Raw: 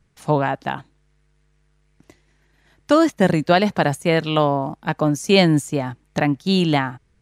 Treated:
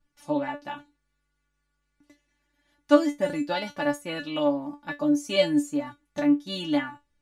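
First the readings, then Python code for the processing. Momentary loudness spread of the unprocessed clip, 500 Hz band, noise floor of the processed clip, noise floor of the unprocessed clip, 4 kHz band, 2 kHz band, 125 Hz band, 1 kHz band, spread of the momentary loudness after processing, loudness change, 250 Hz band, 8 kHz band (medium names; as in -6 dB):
11 LU, -7.0 dB, -77 dBFS, -62 dBFS, -8.0 dB, -9.0 dB, -20.5 dB, -11.0 dB, 14 LU, -7.0 dB, -5.0 dB, -9.0 dB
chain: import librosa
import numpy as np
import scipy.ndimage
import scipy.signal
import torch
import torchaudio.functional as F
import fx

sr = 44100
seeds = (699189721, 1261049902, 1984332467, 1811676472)

y = fx.comb_fb(x, sr, f0_hz=290.0, decay_s=0.17, harmonics='all', damping=0.0, mix_pct=100)
y = F.gain(torch.from_numpy(y), 2.5).numpy()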